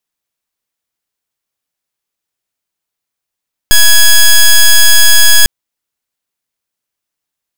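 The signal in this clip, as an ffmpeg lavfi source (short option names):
-f lavfi -i "aevalsrc='0.668*(2*lt(mod(1670*t,1),0.09)-1)':d=1.75:s=44100"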